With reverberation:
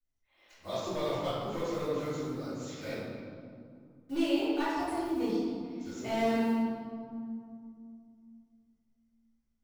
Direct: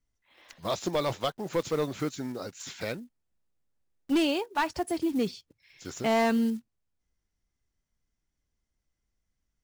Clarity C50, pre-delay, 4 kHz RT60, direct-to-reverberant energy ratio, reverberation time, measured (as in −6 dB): −2.5 dB, 3 ms, 1.3 s, −14.0 dB, 2.4 s